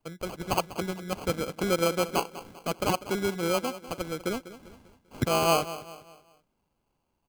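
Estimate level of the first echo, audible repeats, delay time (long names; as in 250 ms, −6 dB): −15.0 dB, 3, 197 ms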